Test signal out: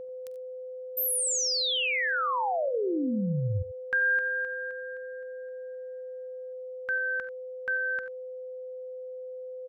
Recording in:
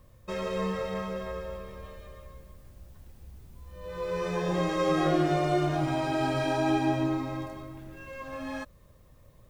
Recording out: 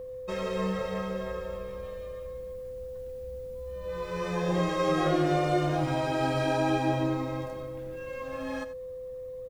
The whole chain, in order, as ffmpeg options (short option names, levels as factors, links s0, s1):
-af "aeval=exprs='val(0)+0.0141*sin(2*PI*510*n/s)':c=same,aecho=1:1:46|74|90:0.106|0.112|0.168"